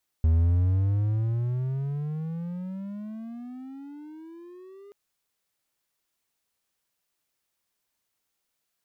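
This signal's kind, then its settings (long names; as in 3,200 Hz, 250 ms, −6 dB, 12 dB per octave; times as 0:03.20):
pitch glide with a swell triangle, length 4.68 s, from 78.9 Hz, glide +28.5 semitones, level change −28 dB, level −15 dB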